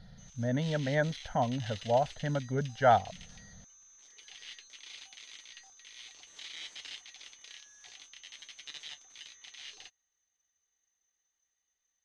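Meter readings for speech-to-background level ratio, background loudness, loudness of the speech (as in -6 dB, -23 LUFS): 17.0 dB, -47.5 LUFS, -30.5 LUFS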